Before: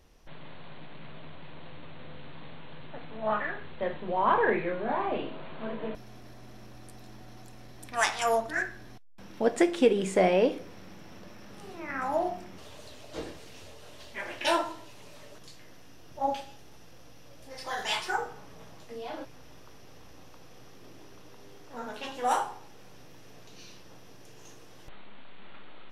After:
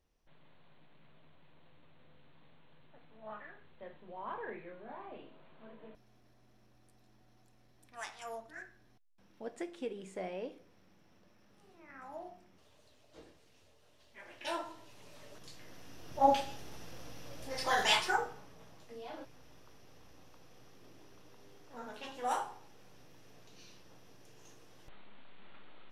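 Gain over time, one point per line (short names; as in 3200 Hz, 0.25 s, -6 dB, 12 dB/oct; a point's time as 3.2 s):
14.01 s -18 dB
14.9 s -7.5 dB
16.35 s +4 dB
17.82 s +4 dB
18.54 s -7.5 dB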